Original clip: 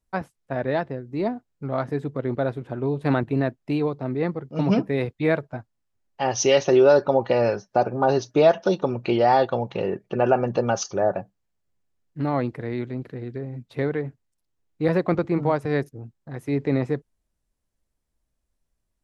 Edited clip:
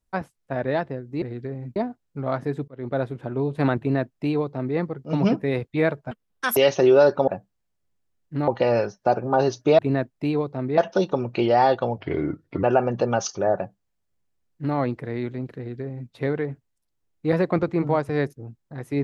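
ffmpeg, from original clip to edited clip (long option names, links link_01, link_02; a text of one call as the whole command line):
ffmpeg -i in.wav -filter_complex "[0:a]asplit=12[link_01][link_02][link_03][link_04][link_05][link_06][link_07][link_08][link_09][link_10][link_11][link_12];[link_01]atrim=end=1.222[link_13];[link_02]atrim=start=13.128:end=13.672[link_14];[link_03]atrim=start=1.218:end=2.14,asetpts=PTS-STARTPTS,afade=type=out:start_time=0.918:duration=0.004:curve=hsin[link_15];[link_04]atrim=start=2.14:end=5.574,asetpts=PTS-STARTPTS,afade=type=in:duration=0.3[link_16];[link_05]atrim=start=5.57:end=6.46,asetpts=PTS-STARTPTS,asetrate=85995,aresample=44100[link_17];[link_06]atrim=start=6.456:end=7.172[link_18];[link_07]atrim=start=11.118:end=12.322[link_19];[link_08]atrim=start=7.168:end=8.482[link_20];[link_09]atrim=start=3.248:end=4.242[link_21];[link_10]atrim=start=8.478:end=9.684[link_22];[link_11]atrim=start=9.68:end=10.19,asetpts=PTS-STARTPTS,asetrate=34398,aresample=44100[link_23];[link_12]atrim=start=10.186[link_24];[link_13][link_14]acrossfade=duration=0.004:curve1=hsin:curve2=hsin[link_25];[link_15][link_16]concat=n=2:v=0:a=1[link_26];[link_25][link_26]acrossfade=duration=0.004:curve1=hsin:curve2=hsin[link_27];[link_27][link_17]acrossfade=duration=0.004:curve1=hsin:curve2=hsin[link_28];[link_28][link_18]acrossfade=duration=0.004:curve1=hsin:curve2=hsin[link_29];[link_29][link_19]acrossfade=duration=0.004:curve1=hsin:curve2=hsin[link_30];[link_30][link_20]acrossfade=duration=0.004:curve1=hsin:curve2=hsin[link_31];[link_31][link_21]acrossfade=duration=0.004:curve1=hsin:curve2=hsin[link_32];[link_32][link_22]acrossfade=duration=0.004:curve1=hsin:curve2=hsin[link_33];[link_33][link_23]acrossfade=duration=0.004:curve1=hsin:curve2=hsin[link_34];[link_34][link_24]acrossfade=duration=0.004:curve1=hsin:curve2=hsin" out.wav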